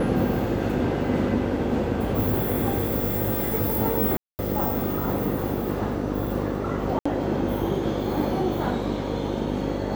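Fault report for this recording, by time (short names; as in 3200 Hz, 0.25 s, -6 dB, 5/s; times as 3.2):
buzz 50 Hz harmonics 11 -30 dBFS
4.17–4.39 gap 0.219 s
6.99–7.05 gap 65 ms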